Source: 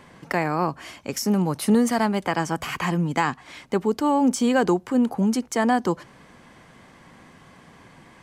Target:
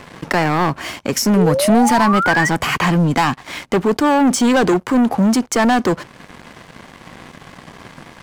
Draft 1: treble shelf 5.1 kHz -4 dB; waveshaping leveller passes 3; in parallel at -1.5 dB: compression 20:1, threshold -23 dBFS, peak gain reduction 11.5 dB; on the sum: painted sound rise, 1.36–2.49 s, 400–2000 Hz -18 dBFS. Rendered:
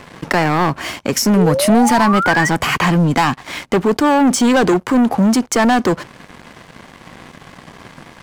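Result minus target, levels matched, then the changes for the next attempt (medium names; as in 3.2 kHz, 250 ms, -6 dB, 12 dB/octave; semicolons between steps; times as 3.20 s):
compression: peak gain reduction -8 dB
change: compression 20:1, threshold -31.5 dBFS, peak gain reduction 20 dB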